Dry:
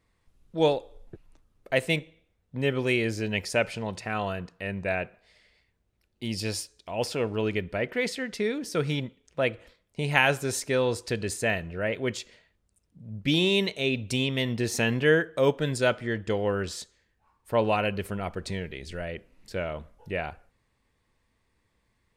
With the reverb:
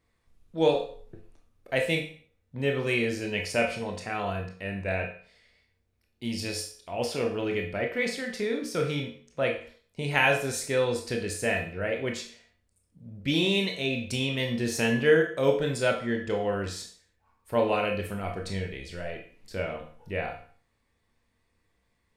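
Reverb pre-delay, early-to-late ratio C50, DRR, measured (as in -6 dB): 19 ms, 7.5 dB, 1.5 dB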